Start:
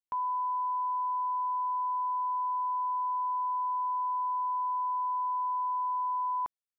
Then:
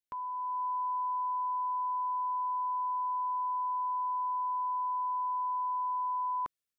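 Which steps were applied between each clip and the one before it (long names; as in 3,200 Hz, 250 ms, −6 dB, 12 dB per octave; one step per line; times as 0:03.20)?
parametric band 850 Hz −14 dB 0.44 octaves
automatic gain control gain up to 5 dB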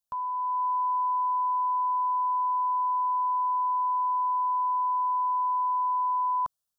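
phaser with its sweep stopped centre 880 Hz, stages 4
level +6.5 dB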